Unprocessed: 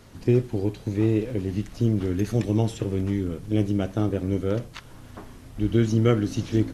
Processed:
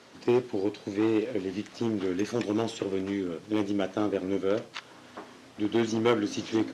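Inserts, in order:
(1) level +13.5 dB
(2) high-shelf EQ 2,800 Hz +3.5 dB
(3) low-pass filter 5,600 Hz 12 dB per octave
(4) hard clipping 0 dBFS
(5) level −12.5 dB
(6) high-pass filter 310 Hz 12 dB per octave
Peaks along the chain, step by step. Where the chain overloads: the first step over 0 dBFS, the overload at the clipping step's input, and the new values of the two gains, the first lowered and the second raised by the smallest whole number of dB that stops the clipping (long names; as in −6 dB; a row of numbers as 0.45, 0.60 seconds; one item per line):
+6.5, +6.5, +6.5, 0.0, −12.5, −10.5 dBFS
step 1, 6.5 dB
step 1 +6.5 dB, step 5 −5.5 dB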